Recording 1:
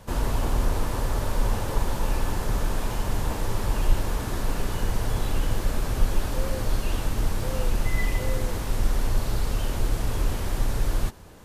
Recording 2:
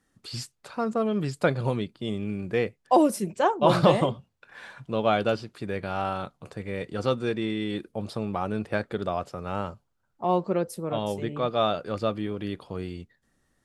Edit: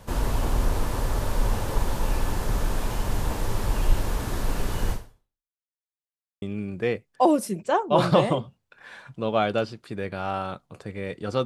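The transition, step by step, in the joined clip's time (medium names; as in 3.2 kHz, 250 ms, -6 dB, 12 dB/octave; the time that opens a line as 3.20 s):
recording 1
4.92–5.54 s: fade out exponential
5.54–6.42 s: mute
6.42 s: go over to recording 2 from 2.13 s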